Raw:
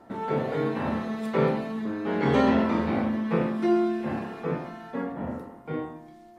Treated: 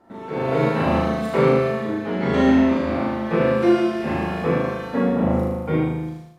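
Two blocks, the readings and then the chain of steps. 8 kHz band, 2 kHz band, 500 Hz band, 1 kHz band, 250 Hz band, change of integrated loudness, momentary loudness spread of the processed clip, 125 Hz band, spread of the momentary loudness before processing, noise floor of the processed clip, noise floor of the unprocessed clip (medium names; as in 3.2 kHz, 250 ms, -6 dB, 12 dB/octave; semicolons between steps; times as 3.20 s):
no reading, +7.0 dB, +7.5 dB, +5.0 dB, +6.0 dB, +6.5 dB, 7 LU, +8.0 dB, 13 LU, -37 dBFS, -50 dBFS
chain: on a send: flutter echo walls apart 6.5 m, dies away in 1.1 s; on the sum: level rider gain up to 15 dB; trim -5 dB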